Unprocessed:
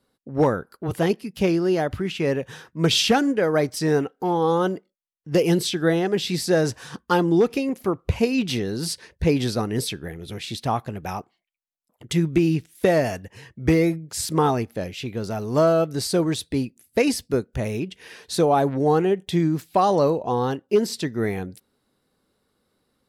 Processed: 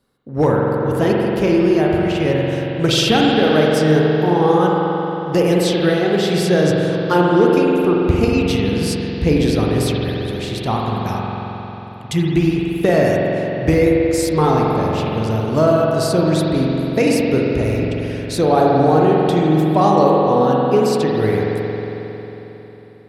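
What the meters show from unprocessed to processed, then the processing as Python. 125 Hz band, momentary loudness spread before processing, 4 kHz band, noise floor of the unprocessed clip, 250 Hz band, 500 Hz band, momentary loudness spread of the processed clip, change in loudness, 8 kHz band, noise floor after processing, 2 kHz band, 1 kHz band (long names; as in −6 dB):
+8.0 dB, 11 LU, +4.0 dB, −75 dBFS, +7.0 dB, +7.0 dB, 10 LU, +6.5 dB, +1.5 dB, −34 dBFS, +6.0 dB, +7.0 dB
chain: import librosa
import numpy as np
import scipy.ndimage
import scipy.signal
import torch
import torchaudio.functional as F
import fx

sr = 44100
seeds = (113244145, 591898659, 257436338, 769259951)

y = fx.low_shelf(x, sr, hz=110.0, db=6.0)
y = fx.rev_spring(y, sr, rt60_s=3.8, pass_ms=(45,), chirp_ms=40, drr_db=-3.0)
y = y * 10.0 ** (1.5 / 20.0)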